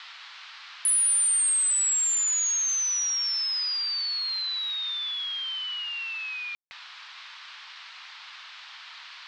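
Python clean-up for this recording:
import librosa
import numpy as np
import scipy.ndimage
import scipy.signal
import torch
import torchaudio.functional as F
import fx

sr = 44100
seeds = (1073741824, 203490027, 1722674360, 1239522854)

y = fx.fix_ambience(x, sr, seeds[0], print_start_s=0.13, print_end_s=0.63, start_s=6.55, end_s=6.71)
y = fx.noise_reduce(y, sr, print_start_s=0.13, print_end_s=0.63, reduce_db=28.0)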